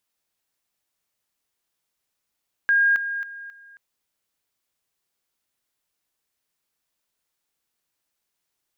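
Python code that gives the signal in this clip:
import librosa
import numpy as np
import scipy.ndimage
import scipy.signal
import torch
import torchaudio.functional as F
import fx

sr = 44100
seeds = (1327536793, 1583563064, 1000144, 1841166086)

y = fx.level_ladder(sr, hz=1620.0, from_db=-15.0, step_db=-10.0, steps=4, dwell_s=0.27, gap_s=0.0)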